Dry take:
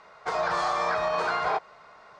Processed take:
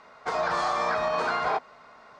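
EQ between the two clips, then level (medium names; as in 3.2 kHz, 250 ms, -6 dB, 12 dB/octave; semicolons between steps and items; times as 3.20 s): peaking EQ 250 Hz +13.5 dB 0.24 oct; 0.0 dB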